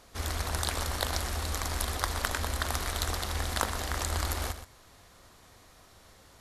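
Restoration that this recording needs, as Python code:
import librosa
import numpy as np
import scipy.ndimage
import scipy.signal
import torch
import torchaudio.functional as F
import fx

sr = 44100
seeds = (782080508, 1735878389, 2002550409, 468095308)

y = fx.fix_declip(x, sr, threshold_db=-11.5)
y = fx.fix_echo_inverse(y, sr, delay_ms=122, level_db=-11.0)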